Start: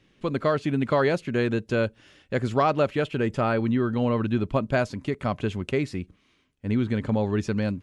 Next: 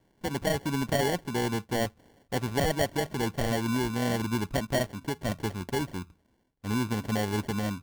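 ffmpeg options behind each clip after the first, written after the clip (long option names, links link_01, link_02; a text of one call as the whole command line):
ffmpeg -i in.wav -af "bandreject=frequency=80.22:width_type=h:width=4,bandreject=frequency=160.44:width_type=h:width=4,acrusher=samples=35:mix=1:aa=0.000001,volume=-4.5dB" out.wav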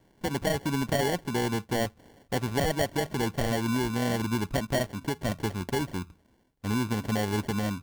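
ffmpeg -i in.wav -af "acompressor=threshold=-35dB:ratio=1.5,volume=4.5dB" out.wav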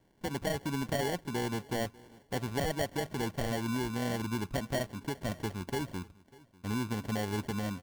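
ffmpeg -i in.wav -af "aecho=1:1:595|1190:0.0708|0.0113,volume=-5.5dB" out.wav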